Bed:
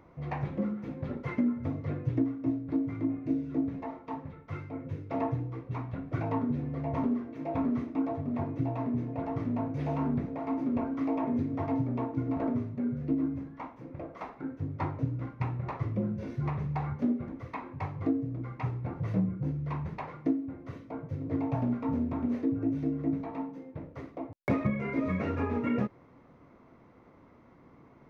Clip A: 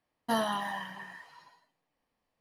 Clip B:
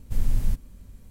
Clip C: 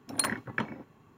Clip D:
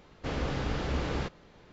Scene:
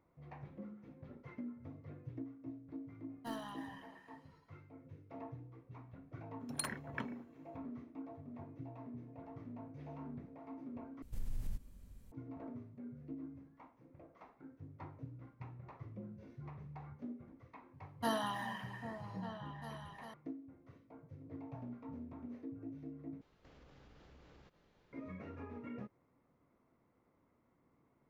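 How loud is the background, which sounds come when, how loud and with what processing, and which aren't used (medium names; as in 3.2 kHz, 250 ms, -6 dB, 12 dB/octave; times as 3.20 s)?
bed -17.5 dB
2.96 s: add A -16.5 dB + tracing distortion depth 0.032 ms
6.40 s: add C -11 dB
11.02 s: replace with B -10.5 dB + compression 2.5:1, threshold -26 dBFS
17.74 s: add A -6.5 dB + delay with an opening low-pass 398 ms, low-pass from 200 Hz, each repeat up 2 oct, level -6 dB
23.21 s: replace with D -15 dB + compression, threshold -44 dBFS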